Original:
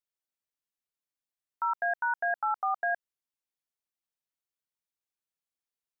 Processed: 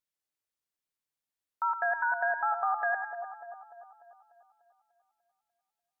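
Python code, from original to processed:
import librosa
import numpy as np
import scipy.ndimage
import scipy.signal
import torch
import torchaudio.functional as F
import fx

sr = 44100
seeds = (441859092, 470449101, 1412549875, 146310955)

y = fx.vibrato(x, sr, rate_hz=11.0, depth_cents=21.0)
y = fx.echo_split(y, sr, split_hz=1100.0, low_ms=296, high_ms=101, feedback_pct=52, wet_db=-7.5)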